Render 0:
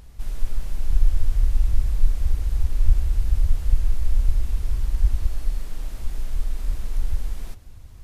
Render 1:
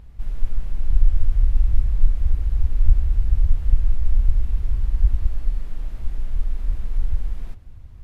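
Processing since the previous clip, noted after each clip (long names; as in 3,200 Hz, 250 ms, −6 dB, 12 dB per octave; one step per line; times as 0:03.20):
bass and treble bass +5 dB, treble −11 dB
level −3 dB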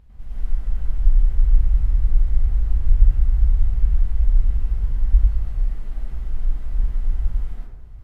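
dense smooth reverb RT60 0.87 s, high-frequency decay 0.4×, pre-delay 90 ms, DRR −7 dB
level −8 dB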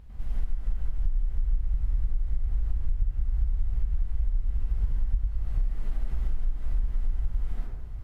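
downward compressor 12 to 1, threshold −23 dBFS, peak gain reduction 18.5 dB
level +2.5 dB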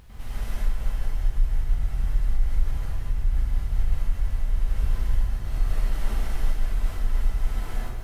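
spectral tilt +2 dB per octave
reverb whose tail is shaped and stops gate 270 ms rising, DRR −4.5 dB
level +7.5 dB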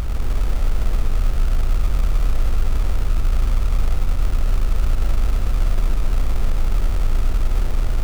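compressor on every frequency bin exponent 0.2
sample-rate reduction 1,300 Hz, jitter 20%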